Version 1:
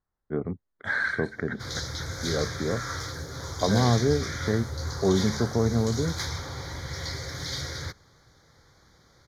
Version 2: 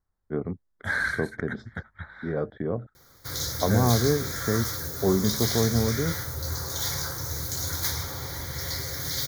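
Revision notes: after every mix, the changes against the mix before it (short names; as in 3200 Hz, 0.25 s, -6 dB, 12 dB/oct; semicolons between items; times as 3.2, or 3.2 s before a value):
second voice: add low shelf 190 Hz +11.5 dB; background: entry +1.65 s; master: remove LPF 5100 Hz 12 dB/oct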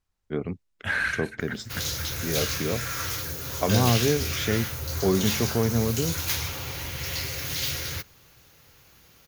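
first voice: remove LPF 1800 Hz 12 dB/oct; background: entry -1.55 s; master: remove Butterworth band-stop 2700 Hz, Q 1.8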